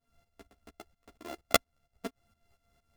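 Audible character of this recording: a buzz of ramps at a fixed pitch in blocks of 64 samples; tremolo saw up 4.3 Hz, depth 85%; a shimmering, thickened sound

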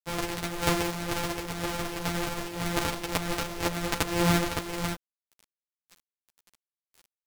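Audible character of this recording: a buzz of ramps at a fixed pitch in blocks of 256 samples; tremolo triangle 1.9 Hz, depth 65%; a quantiser's noise floor 8-bit, dither none; a shimmering, thickened sound

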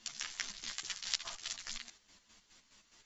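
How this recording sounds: chopped level 4.8 Hz, depth 60%, duty 45%; a shimmering, thickened sound

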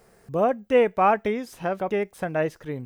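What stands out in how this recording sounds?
noise floor -59 dBFS; spectral tilt -2.0 dB/octave

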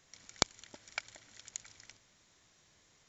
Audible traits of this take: noise floor -68 dBFS; spectral tilt -1.0 dB/octave

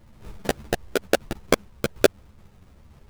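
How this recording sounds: phasing stages 2, 2.1 Hz, lowest notch 510–1100 Hz; aliases and images of a low sample rate 1.1 kHz, jitter 20%; a shimmering, thickened sound

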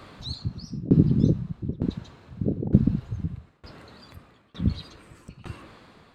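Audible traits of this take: tremolo saw down 1.1 Hz, depth 95%

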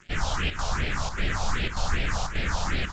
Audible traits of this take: a quantiser's noise floor 8-bit, dither none; chopped level 1.7 Hz, depth 60%, duty 85%; phasing stages 4, 2.6 Hz, lowest notch 310–1100 Hz; A-law

